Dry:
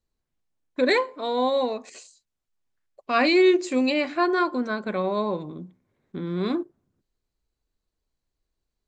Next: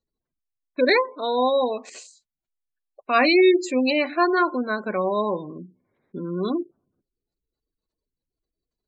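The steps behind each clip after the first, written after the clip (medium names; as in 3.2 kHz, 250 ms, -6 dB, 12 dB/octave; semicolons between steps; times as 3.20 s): spectral gate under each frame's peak -25 dB strong; bass shelf 160 Hz -11 dB; trim +3.5 dB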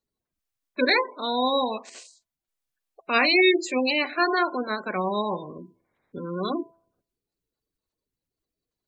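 spectral peaks clipped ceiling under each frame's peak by 13 dB; de-hum 333.1 Hz, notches 3; trim -2.5 dB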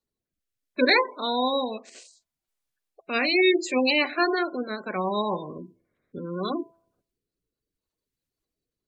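rotary cabinet horn 0.7 Hz; trim +2 dB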